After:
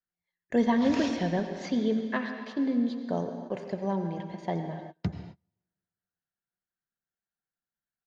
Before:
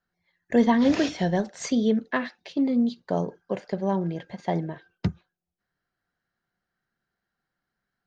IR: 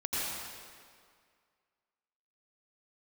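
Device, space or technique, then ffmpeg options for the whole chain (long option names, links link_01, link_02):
keyed gated reverb: -filter_complex "[0:a]agate=range=-10dB:threshold=-45dB:ratio=16:detection=peak,asettb=1/sr,asplit=3[link_01][link_02][link_03];[link_01]atrim=end=1.164[link_04];[link_02]atrim=start=1.16:end=2.09,asetpts=PTS-STARTPTS,afade=type=in:duration=0.004:curve=qsin,afade=type=out:start_time=0.926:duration=0.004:curve=qsin,lowpass=frequency=5000:width=0.5412,lowpass=frequency=5000:width=1.3066[link_05];[link_03]atrim=start=2.086[link_06];[link_04][link_05]acrossfade=duration=0.004:curve1=hsin:curve2=qsin[link_07];[link_07][link_06]acrossfade=duration=0.004:curve1=qsin:curve2=hsin,aecho=1:1:138|276:0.0708|0.0106,asplit=3[link_08][link_09][link_10];[1:a]atrim=start_sample=2205[link_11];[link_09][link_11]afir=irnorm=-1:irlink=0[link_12];[link_10]apad=whole_len=367745[link_13];[link_12][link_13]sidechaingate=range=-33dB:threshold=-51dB:ratio=16:detection=peak,volume=-11.5dB[link_14];[link_08][link_14]amix=inputs=2:normalize=0,volume=-6.5dB"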